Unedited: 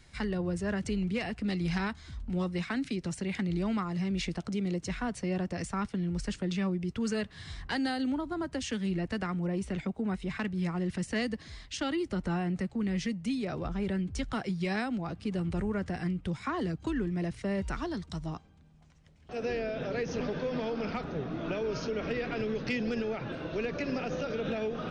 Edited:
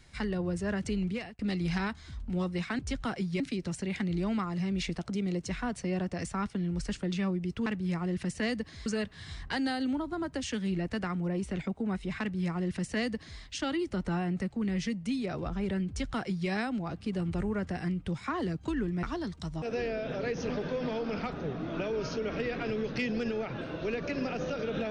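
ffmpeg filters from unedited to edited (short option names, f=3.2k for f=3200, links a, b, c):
-filter_complex "[0:a]asplit=8[a][b][c][d][e][f][g][h];[a]atrim=end=1.39,asetpts=PTS-STARTPTS,afade=t=out:st=1.07:d=0.32[i];[b]atrim=start=1.39:end=2.792,asetpts=PTS-STARTPTS,afade=t=in:d=0.004:c=hsin[j];[c]atrim=start=14.068:end=14.682[k];[d]atrim=start=2.788:end=7.052[l];[e]atrim=start=10.388:end=11.592[m];[f]atrim=start=7.048:end=17.222[n];[g]atrim=start=17.728:end=18.322[o];[h]atrim=start=19.328[p];[i][j]concat=n=2:v=0:a=1[q];[q][k]acrossfade=d=0.004:c1=hsin:c2=hsin[r];[r][l]acrossfade=d=0.004:c1=hsin:c2=hsin[s];[s][m]acrossfade=d=0.004:c1=hsin:c2=hsin[t];[t][n]acrossfade=d=0.004:c1=hsin:c2=hsin[u];[u][o]acrossfade=d=0.004:c1=hsin:c2=hsin[v];[v][p]acrossfade=d=0.004:c1=hsin:c2=hsin"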